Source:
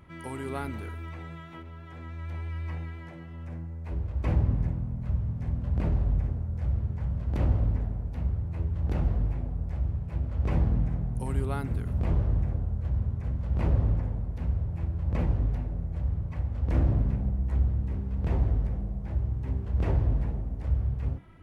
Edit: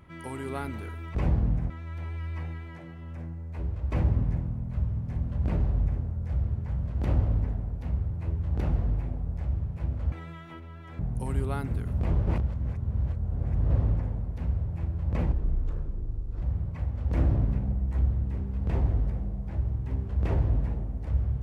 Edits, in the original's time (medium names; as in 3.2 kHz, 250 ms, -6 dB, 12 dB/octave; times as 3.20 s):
1.15–2.02 s: swap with 10.44–10.99 s
12.27–13.70 s: reverse
15.32–15.99 s: speed 61%